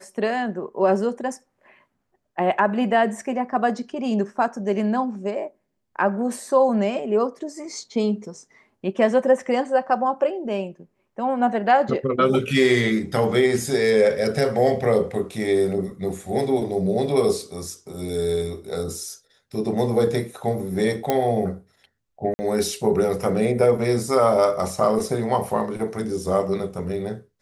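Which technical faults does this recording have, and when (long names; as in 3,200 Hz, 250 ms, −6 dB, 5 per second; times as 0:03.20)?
0:21.10: click −7 dBFS
0:22.34–0:22.39: drop-out 50 ms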